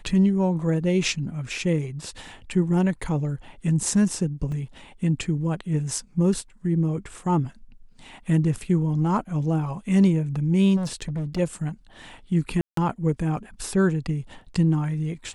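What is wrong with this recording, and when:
4.52 gap 3 ms
10.76–11.39 clipped -24.5 dBFS
12.61–12.77 gap 0.163 s

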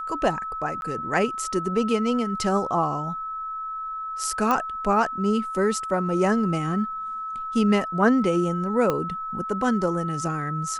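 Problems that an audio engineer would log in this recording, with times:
tone 1300 Hz -29 dBFS
0.81–0.82 gap 11 ms
4.51 pop -11 dBFS
8.9 pop -11 dBFS

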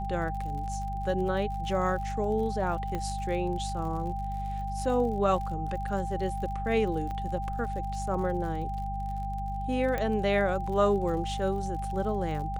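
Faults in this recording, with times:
crackle 58/s -38 dBFS
hum 50 Hz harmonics 4 -35 dBFS
tone 790 Hz -34 dBFS
2.95 pop -20 dBFS
7.11 pop -25 dBFS
9.98 pop -18 dBFS

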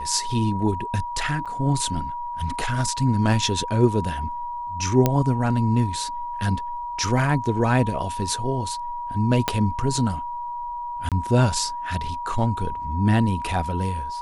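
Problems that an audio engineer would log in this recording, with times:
tone 960 Hz -28 dBFS
1.45–1.46 gap 6.7 ms
5.06 pop -5 dBFS
9.48 pop -5 dBFS
11.09–11.12 gap 27 ms

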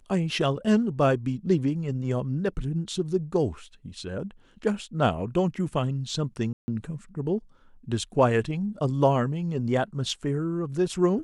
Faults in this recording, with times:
6.53–6.68 gap 0.15 s

